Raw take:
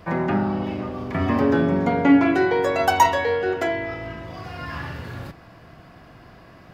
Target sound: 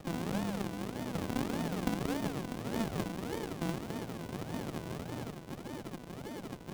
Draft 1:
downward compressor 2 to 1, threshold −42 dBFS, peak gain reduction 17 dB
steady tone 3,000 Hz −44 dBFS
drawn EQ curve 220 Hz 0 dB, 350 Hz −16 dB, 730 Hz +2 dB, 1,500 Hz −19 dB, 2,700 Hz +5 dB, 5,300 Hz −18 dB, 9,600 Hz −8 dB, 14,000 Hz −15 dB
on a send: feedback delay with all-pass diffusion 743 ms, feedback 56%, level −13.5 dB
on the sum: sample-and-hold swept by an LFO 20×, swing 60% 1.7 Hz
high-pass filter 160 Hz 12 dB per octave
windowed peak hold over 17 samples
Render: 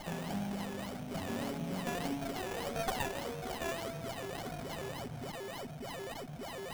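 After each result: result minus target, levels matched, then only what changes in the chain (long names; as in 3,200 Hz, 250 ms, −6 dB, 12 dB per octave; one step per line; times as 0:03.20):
sample-and-hold swept by an LFO: distortion −7 dB; downward compressor: peak gain reduction +3.5 dB
change: sample-and-hold swept by an LFO 69×, swing 60% 1.7 Hz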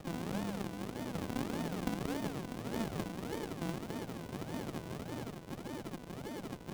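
downward compressor: peak gain reduction +3.5 dB
change: downward compressor 2 to 1, threshold −35.5 dBFS, peak gain reduction 13.5 dB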